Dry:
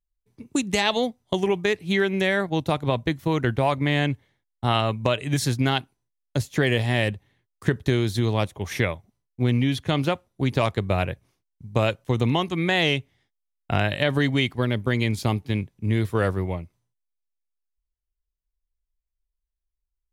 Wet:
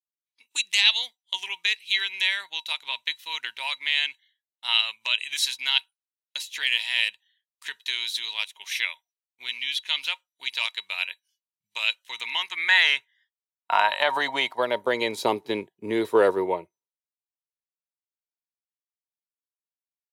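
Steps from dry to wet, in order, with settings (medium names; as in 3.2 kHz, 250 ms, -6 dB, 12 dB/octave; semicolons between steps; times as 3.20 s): spectral noise reduction 21 dB; high-pass sweep 2.7 kHz -> 410 Hz, 11.92–15.39 s; small resonant body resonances 940/3900 Hz, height 17 dB, ringing for 90 ms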